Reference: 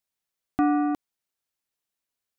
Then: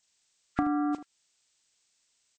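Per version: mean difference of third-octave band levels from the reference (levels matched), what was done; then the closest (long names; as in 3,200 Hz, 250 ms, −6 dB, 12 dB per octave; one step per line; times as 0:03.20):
4.0 dB: hearing-aid frequency compression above 1,200 Hz 1.5 to 1
high-shelf EQ 2,100 Hz +8 dB
downward compressor 5 to 1, threshold −33 dBFS, peak gain reduction 14 dB
on a send: ambience of single reflections 35 ms −16 dB, 78 ms −14.5 dB
on the sum: level +6 dB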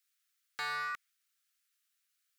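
17.5 dB: in parallel at 0 dB: brickwall limiter −23.5 dBFS, peak gain reduction 10.5 dB
on the sum: Butterworth high-pass 1,200 Hz 96 dB per octave
wave folding −33.5 dBFS
dynamic equaliser 2,000 Hz, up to +5 dB, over −57 dBFS, Q 1.6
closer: first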